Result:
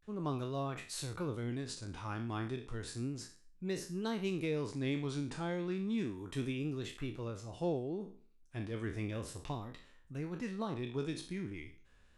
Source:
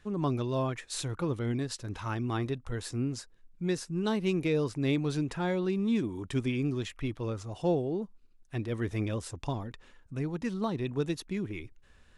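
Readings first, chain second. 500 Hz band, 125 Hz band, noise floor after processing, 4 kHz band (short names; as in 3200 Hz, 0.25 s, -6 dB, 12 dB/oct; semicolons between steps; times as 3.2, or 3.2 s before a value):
-7.0 dB, -7.0 dB, -63 dBFS, -5.0 dB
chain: spectral trails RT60 0.42 s; vibrato 0.33 Hz 83 cents; gain -7.5 dB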